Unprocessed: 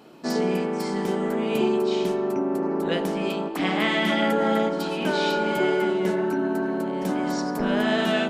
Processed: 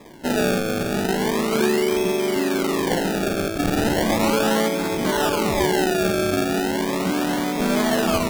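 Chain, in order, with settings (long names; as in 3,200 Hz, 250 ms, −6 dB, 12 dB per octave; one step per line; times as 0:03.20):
in parallel at −2 dB: brickwall limiter −22 dBFS, peak gain reduction 11 dB
on the sum: sample-and-hold swept by an LFO 30×, swing 100% 0.36 Hz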